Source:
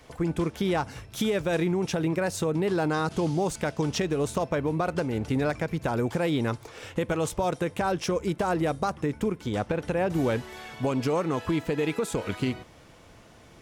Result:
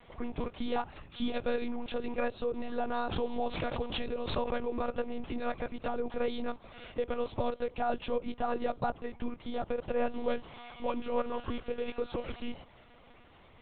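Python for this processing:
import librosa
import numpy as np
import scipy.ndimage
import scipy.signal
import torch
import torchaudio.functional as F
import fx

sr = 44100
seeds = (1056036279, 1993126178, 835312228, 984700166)

y = fx.peak_eq(x, sr, hz=290.0, db=-12.0, octaves=0.35)
y = y + 0.88 * np.pad(y, (int(3.7 * sr / 1000.0), 0))[:len(y)]
y = fx.dynamic_eq(y, sr, hz=1900.0, q=1.7, threshold_db=-47.0, ratio=4.0, max_db=-7)
y = fx.lpc_monotone(y, sr, seeds[0], pitch_hz=240.0, order=10)
y = fx.pre_swell(y, sr, db_per_s=62.0, at=(2.78, 4.93))
y = F.gain(torch.from_numpy(y), -6.0).numpy()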